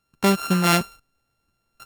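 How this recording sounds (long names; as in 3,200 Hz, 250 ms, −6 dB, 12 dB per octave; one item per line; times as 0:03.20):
a buzz of ramps at a fixed pitch in blocks of 32 samples
Ogg Vorbis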